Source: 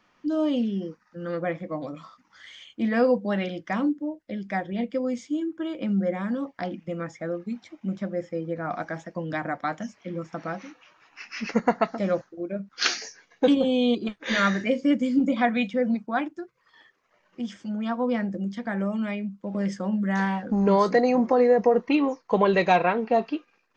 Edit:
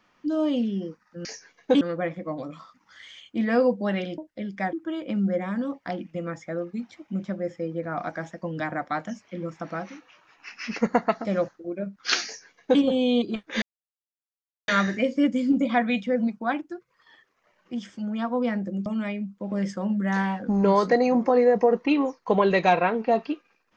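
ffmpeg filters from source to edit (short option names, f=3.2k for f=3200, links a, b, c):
-filter_complex "[0:a]asplit=7[a][b][c][d][e][f][g];[a]atrim=end=1.252[h];[b]atrim=start=12.978:end=13.542[i];[c]atrim=start=1.248:end=3.622[j];[d]atrim=start=4.098:end=4.652[k];[e]atrim=start=5.458:end=14.35,asetpts=PTS-STARTPTS,afade=t=out:st=8.888:d=0.004:c=hsin,apad=pad_dur=1.06[l];[f]atrim=start=14.35:end=18.532,asetpts=PTS-STARTPTS,afade=t=in:d=0.004:c=hsin[m];[g]atrim=start=18.888[n];[h][i]acrossfade=d=0.004:c1=hsin:c2=hsin[o];[o][j]acrossfade=d=0.004:c1=hsin:c2=hsin[p];[p][k]acrossfade=d=0.004:c1=hsin:c2=hsin[q];[l][m]concat=n=2:v=0:a=1[r];[q][r]acrossfade=d=0.004:c1=hsin:c2=hsin[s];[s][n]acrossfade=d=0.004:c1=hsin:c2=hsin"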